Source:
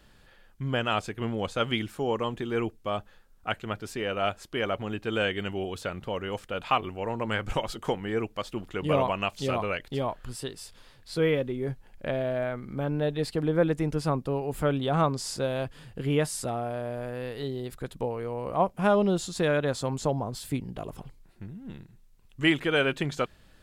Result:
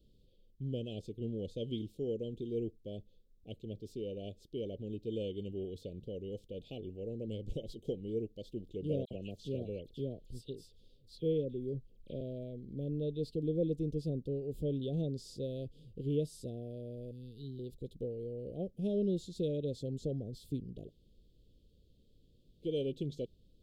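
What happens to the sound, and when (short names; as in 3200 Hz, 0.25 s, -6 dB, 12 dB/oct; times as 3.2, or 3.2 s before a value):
9.05–12.21 dispersion lows, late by 57 ms, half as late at 2600 Hz
17.11–17.59 Chebyshev band-stop 220–3900 Hz
20.88–22.64 room tone, crossfade 0.06 s
whole clip: elliptic band-stop 480–3500 Hz, stop band 50 dB; bell 9600 Hz -14 dB 2.1 oct; gain -6.5 dB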